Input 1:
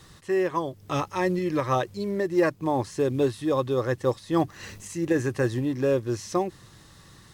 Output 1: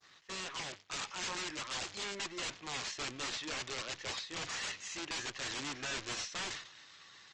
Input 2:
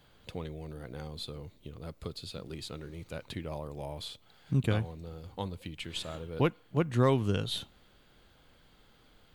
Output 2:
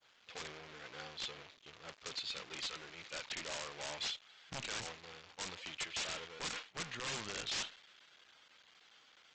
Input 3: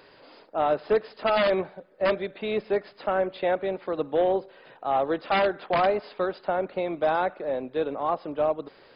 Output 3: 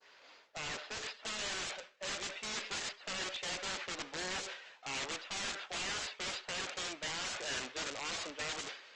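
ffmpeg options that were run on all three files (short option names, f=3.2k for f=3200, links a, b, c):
-af "aeval=exprs='val(0)+0.5*0.0141*sgn(val(0))':c=same,agate=range=-33dB:threshold=-31dB:ratio=3:detection=peak,bandpass=f=2.7k:t=q:w=0.68:csg=0,areverse,acompressor=threshold=-40dB:ratio=16,areverse,acrusher=bits=4:mode=log:mix=0:aa=0.000001,aresample=16000,aeval=exprs='(mod(100*val(0)+1,2)-1)/100':c=same,aresample=44100,adynamicequalizer=threshold=0.00112:dfrequency=2700:dqfactor=0.76:tfrequency=2700:tqfactor=0.76:attack=5:release=100:ratio=0.375:range=1.5:mode=boostabove:tftype=bell,volume=5dB" -ar 48000 -c:a libopus -b:a 24k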